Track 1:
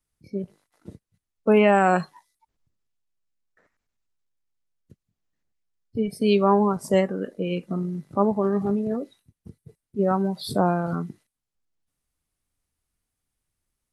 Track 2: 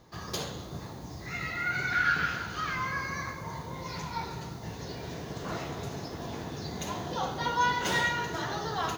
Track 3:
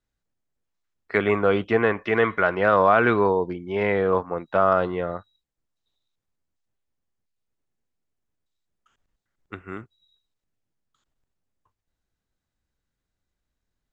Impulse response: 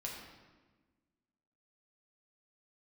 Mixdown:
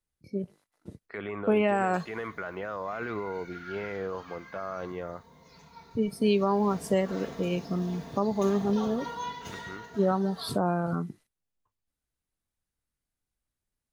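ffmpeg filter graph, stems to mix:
-filter_complex "[0:a]agate=range=-7dB:threshold=-55dB:ratio=16:detection=peak,volume=-2.5dB[a];[1:a]aecho=1:1:4.4:0.71,adelay=1600,volume=-10dB,afade=t=in:st=6.04:d=0.57:silence=0.281838,afade=t=out:st=8.82:d=0.7:silence=0.375837,asplit=2[b][c];[c]volume=-4.5dB[d];[2:a]alimiter=limit=-15.5dB:level=0:latency=1:release=60,volume=-9dB[e];[3:a]atrim=start_sample=2205[f];[d][f]afir=irnorm=-1:irlink=0[g];[a][b][e][g]amix=inputs=4:normalize=0,alimiter=limit=-14.5dB:level=0:latency=1:release=244"

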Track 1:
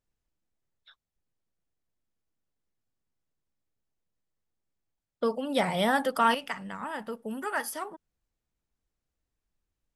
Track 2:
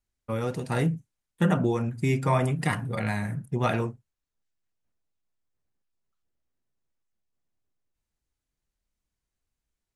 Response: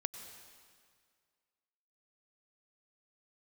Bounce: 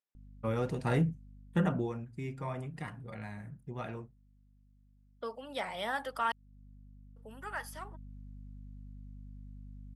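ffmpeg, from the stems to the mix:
-filter_complex "[0:a]highpass=f=920:p=1,volume=-5.5dB,asplit=3[a][b][c];[a]atrim=end=6.32,asetpts=PTS-STARTPTS,afade=t=out:st=6.316:d=0.004:c=hsin[d];[b]atrim=start=6.32:end=7.16,asetpts=PTS-STARTPTS,volume=0[e];[c]atrim=start=7.16,asetpts=PTS-STARTPTS,afade=t=in:d=0.004:c=hsin[f];[d][e][f]concat=n=3:v=0:a=1,asplit=2[g][h];[1:a]acontrast=38,aeval=exprs='val(0)+0.00708*(sin(2*PI*50*n/s)+sin(2*PI*2*50*n/s)/2+sin(2*PI*3*50*n/s)/3+sin(2*PI*4*50*n/s)/4+sin(2*PI*5*50*n/s)/5)':c=same,adelay=150,volume=8dB,afade=t=out:st=1.35:d=0.71:silence=0.266073,afade=t=in:st=5.35:d=0.6:silence=0.316228,afade=t=in:st=7.27:d=0.33:silence=0.473151[i];[h]apad=whole_len=445679[j];[i][j]sidechaincompress=threshold=-35dB:ratio=8:attack=16:release=449[k];[g][k]amix=inputs=2:normalize=0,highshelf=f=5.3k:g=-9"

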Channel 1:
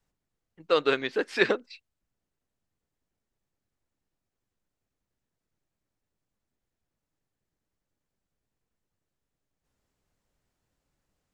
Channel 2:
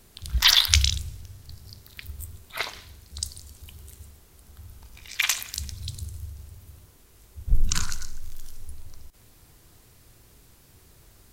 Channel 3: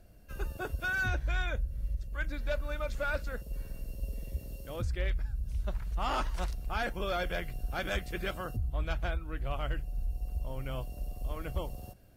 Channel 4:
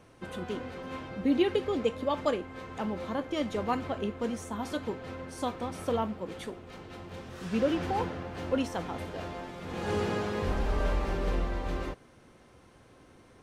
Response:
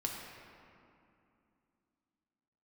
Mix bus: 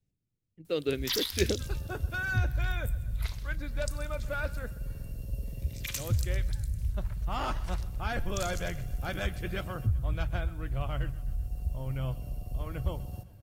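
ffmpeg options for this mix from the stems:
-filter_complex "[0:a]firequalizer=gain_entry='entry(310,0);entry(1000,-19);entry(2300,-6)':delay=0.05:min_phase=1,volume=-3dB[a];[1:a]highshelf=f=5.5k:g=11.5,asoftclip=type=tanh:threshold=-3.5dB,adelay=650,volume=-17dB,asplit=2[b][c];[c]volume=-18dB[d];[2:a]adelay=1300,volume=-1.5dB,asplit=2[e][f];[f]volume=-19dB[g];[d][g]amix=inputs=2:normalize=0,aecho=0:1:128|256|384|512|640|768|896|1024:1|0.55|0.303|0.166|0.0915|0.0503|0.0277|0.0152[h];[a][b][e][h]amix=inputs=4:normalize=0,equalizer=f=110:w=1:g=11"

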